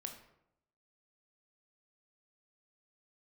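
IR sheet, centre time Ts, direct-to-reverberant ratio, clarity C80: 19 ms, 4.0 dB, 11.0 dB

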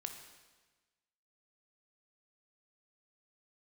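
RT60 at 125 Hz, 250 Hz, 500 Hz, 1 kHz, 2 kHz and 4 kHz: 1.4 s, 1.4 s, 1.3 s, 1.3 s, 1.3 s, 1.2 s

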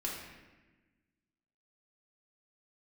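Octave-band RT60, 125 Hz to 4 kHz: 1.7 s, 1.8 s, 1.3 s, 1.1 s, 1.3 s, 0.90 s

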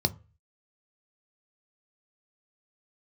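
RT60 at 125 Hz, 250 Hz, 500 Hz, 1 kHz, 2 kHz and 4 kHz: 0.50 s, 0.30 s, 0.35 s, 0.35 s, 0.35 s, 0.20 s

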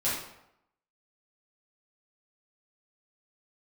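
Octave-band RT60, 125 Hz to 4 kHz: 0.75 s, 0.75 s, 0.80 s, 0.80 s, 0.70 s, 0.55 s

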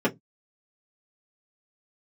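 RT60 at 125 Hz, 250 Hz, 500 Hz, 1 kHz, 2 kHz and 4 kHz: 0.30 s, 0.25 s, 0.20 s, 0.10 s, 0.10 s, 0.10 s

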